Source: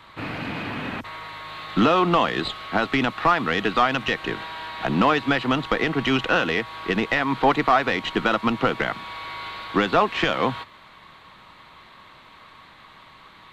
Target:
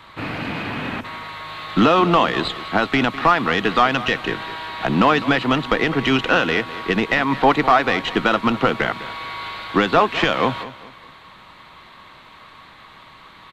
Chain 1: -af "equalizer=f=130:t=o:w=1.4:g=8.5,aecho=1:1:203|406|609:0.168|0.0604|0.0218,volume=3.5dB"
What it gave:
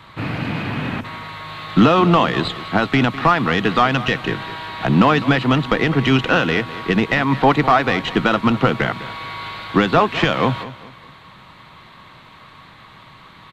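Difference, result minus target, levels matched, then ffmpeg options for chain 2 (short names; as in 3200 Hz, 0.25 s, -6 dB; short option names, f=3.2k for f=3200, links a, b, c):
125 Hz band +6.0 dB
-af "aecho=1:1:203|406|609:0.168|0.0604|0.0218,volume=3.5dB"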